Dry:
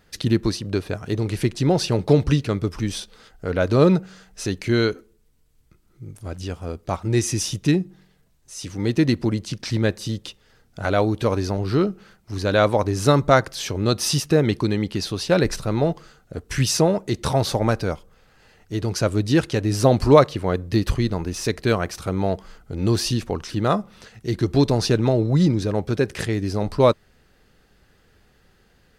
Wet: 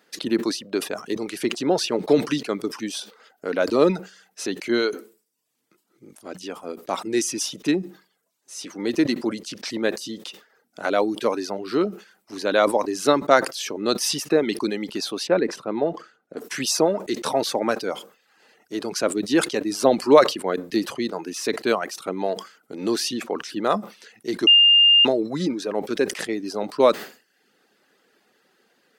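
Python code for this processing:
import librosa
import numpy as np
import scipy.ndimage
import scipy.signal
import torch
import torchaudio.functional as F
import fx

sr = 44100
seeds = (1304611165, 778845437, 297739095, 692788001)

y = fx.lowpass(x, sr, hz=1500.0, slope=6, at=(15.27, 16.37))
y = fx.edit(y, sr, fx.bleep(start_s=24.47, length_s=0.58, hz=2810.0, db=-8.5), tone=tone)
y = scipy.signal.sosfilt(scipy.signal.butter(4, 240.0, 'highpass', fs=sr, output='sos'), y)
y = fx.dereverb_blind(y, sr, rt60_s=0.64)
y = fx.sustainer(y, sr, db_per_s=150.0)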